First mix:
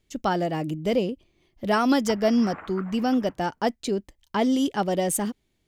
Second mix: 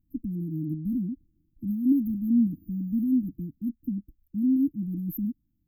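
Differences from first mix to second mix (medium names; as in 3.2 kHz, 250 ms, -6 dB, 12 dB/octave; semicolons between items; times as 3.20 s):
background: remove low-pass 2.1 kHz 24 dB/octave; master: add brick-wall FIR band-stop 330–12000 Hz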